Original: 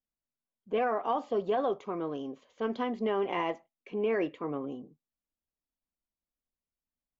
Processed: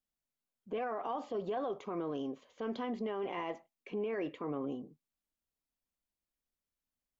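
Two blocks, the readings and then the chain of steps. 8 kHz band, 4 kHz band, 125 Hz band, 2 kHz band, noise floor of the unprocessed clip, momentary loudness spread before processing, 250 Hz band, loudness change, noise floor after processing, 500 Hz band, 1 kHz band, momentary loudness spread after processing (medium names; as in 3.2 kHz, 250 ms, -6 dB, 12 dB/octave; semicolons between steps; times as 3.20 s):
no reading, -6.0 dB, -3.0 dB, -7.5 dB, under -85 dBFS, 10 LU, -4.0 dB, -6.5 dB, under -85 dBFS, -6.5 dB, -7.0 dB, 6 LU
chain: peak limiter -29 dBFS, peak gain reduction 9 dB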